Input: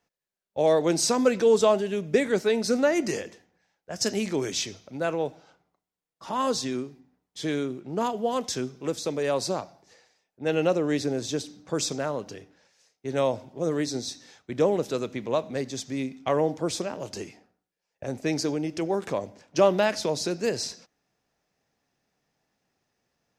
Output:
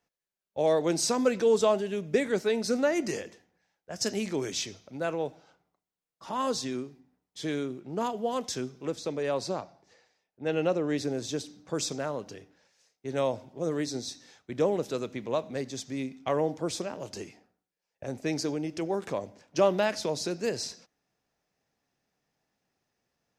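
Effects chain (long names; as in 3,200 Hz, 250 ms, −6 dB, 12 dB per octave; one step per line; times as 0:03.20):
0:08.85–0:10.98: high-shelf EQ 8,100 Hz −11.5 dB
level −3.5 dB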